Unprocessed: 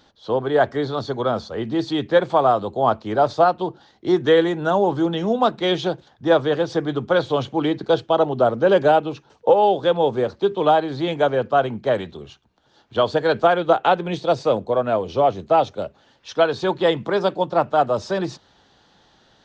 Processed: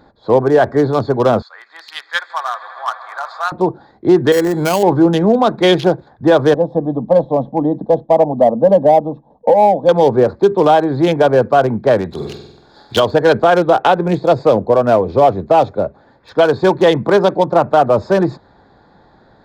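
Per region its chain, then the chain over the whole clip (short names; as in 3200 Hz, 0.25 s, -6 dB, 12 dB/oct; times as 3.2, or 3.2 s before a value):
1.42–3.52 HPF 1300 Hz 24 dB/oct + swelling echo 80 ms, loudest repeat 5, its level -18 dB
4.32–4.83 resonant high shelf 3100 Hz -11 dB, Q 1.5 + compressor 2.5:1, threshold -23 dBFS + sample-rate reducer 3700 Hz
6.54–9.89 running mean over 19 samples + fixed phaser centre 380 Hz, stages 6
12.11–13 block floating point 5-bit + bell 5300 Hz +15 dB 2.1 oct + flutter echo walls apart 8.1 m, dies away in 0.88 s
whole clip: Wiener smoothing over 15 samples; notch 1300 Hz, Q 16; maximiser +11.5 dB; gain -1 dB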